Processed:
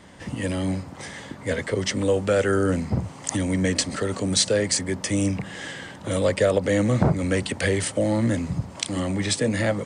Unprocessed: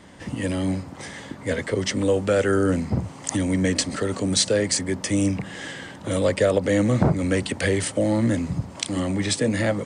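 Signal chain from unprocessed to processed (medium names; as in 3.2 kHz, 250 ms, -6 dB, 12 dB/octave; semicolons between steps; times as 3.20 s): peaking EQ 290 Hz -2.5 dB 0.77 oct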